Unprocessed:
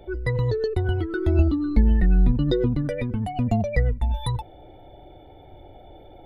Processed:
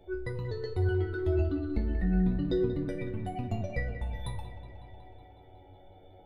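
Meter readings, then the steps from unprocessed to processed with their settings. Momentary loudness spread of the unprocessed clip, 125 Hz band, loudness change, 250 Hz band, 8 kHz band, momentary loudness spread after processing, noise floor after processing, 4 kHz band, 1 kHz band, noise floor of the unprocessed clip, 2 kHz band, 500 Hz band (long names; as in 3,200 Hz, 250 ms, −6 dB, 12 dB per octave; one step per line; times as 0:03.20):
8 LU, −9.0 dB, −8.5 dB, −7.0 dB, can't be measured, 15 LU, −54 dBFS, −10.5 dB, −9.0 dB, −47 dBFS, −7.0 dB, −6.0 dB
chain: tuned comb filter 93 Hz, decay 0.35 s, harmonics all, mix 90%
on a send: delay with a low-pass on its return 184 ms, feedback 70%, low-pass 3,600 Hz, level −11 dB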